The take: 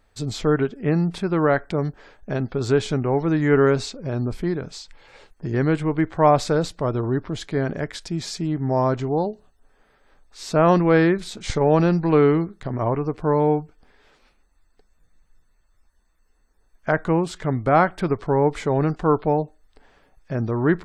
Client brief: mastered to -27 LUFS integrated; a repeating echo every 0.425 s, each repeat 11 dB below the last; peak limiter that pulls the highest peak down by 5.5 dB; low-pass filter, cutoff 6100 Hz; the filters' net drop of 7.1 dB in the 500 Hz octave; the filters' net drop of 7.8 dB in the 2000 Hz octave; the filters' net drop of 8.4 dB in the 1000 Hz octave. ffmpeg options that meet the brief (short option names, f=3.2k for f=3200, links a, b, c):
-af "lowpass=6.1k,equalizer=f=500:t=o:g=-7,equalizer=f=1k:t=o:g=-7,equalizer=f=2k:t=o:g=-7,alimiter=limit=-15dB:level=0:latency=1,aecho=1:1:425|850|1275:0.282|0.0789|0.0221"